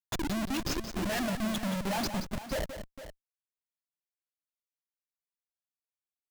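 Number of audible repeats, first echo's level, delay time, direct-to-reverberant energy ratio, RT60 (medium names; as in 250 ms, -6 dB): 2, -9.5 dB, 176 ms, no reverb, no reverb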